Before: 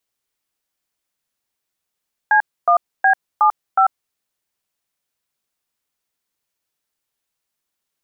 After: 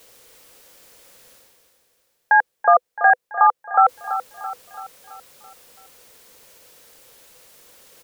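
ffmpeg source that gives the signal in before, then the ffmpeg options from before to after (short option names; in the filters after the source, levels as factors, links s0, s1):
-f lavfi -i "aevalsrc='0.237*clip(min(mod(t,0.366),0.093-mod(t,0.366))/0.002,0,1)*(eq(floor(t/0.366),0)*(sin(2*PI*852*mod(t,0.366))+sin(2*PI*1633*mod(t,0.366)))+eq(floor(t/0.366),1)*(sin(2*PI*697*mod(t,0.366))+sin(2*PI*1209*mod(t,0.366)))+eq(floor(t/0.366),2)*(sin(2*PI*770*mod(t,0.366))+sin(2*PI*1633*mod(t,0.366)))+eq(floor(t/0.366),3)*(sin(2*PI*852*mod(t,0.366))+sin(2*PI*1209*mod(t,0.366)))+eq(floor(t/0.366),4)*(sin(2*PI*770*mod(t,0.366))+sin(2*PI*1336*mod(t,0.366))))':d=1.83:s=44100"
-af "equalizer=f=500:w=3.7:g=13.5,areverse,acompressor=mode=upward:threshold=0.0447:ratio=2.5,areverse,aecho=1:1:333|666|999|1332|1665|1998:0.266|0.138|0.0719|0.0374|0.0195|0.0101"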